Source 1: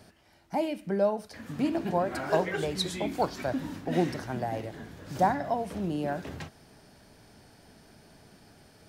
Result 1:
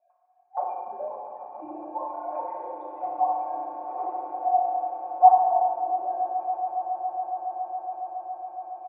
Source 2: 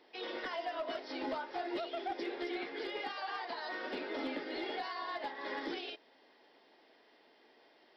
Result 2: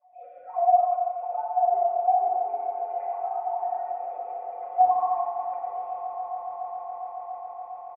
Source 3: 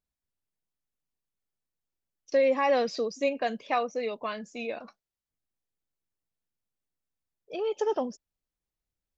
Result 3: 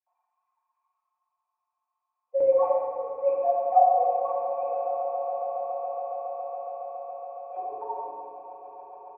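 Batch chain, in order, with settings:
sine-wave speech; comb 5.5 ms, depth 96%; reverse; upward compressor, threshold -47 dBFS; reverse; vocal tract filter a; tremolo saw up 7.9 Hz, depth 60%; notch 1200 Hz, Q 20; on a send: swelling echo 0.139 s, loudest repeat 8, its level -15 dB; on the sum: FDN reverb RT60 1.8 s, low-frequency decay 1.4×, high-frequency decay 0.85×, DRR -5.5 dB; match loudness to -27 LUFS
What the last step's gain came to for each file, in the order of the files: +3.0, +10.5, +9.5 dB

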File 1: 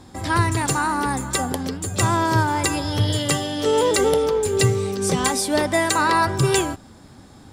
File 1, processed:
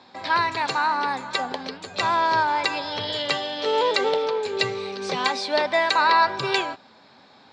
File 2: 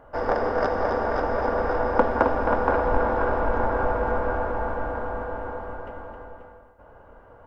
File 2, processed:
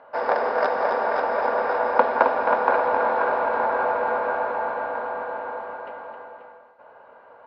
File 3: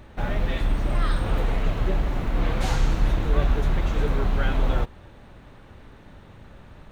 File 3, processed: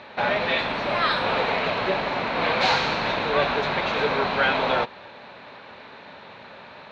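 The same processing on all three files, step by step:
speaker cabinet 310–5000 Hz, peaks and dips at 320 Hz -8 dB, 620 Hz +3 dB, 950 Hz +5 dB, 1600 Hz +3 dB, 2400 Hz +7 dB, 4100 Hz +9 dB; match loudness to -23 LUFS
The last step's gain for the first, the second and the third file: -3.5, 0.0, +7.5 dB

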